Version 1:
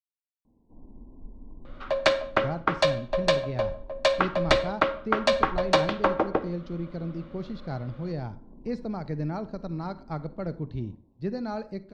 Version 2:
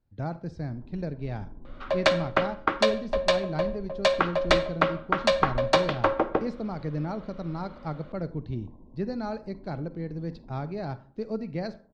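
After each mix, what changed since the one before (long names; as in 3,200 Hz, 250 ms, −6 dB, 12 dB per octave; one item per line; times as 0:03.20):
speech: entry −2.25 s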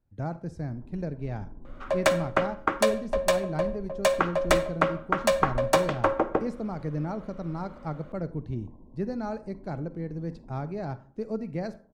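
master: remove low-pass with resonance 4,200 Hz, resonance Q 2.2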